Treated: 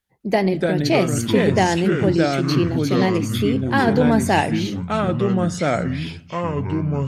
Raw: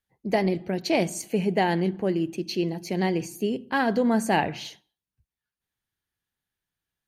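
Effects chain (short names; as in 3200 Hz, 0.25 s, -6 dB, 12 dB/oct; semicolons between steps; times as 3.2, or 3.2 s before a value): echoes that change speed 0.207 s, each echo -4 st, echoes 3; gain +5 dB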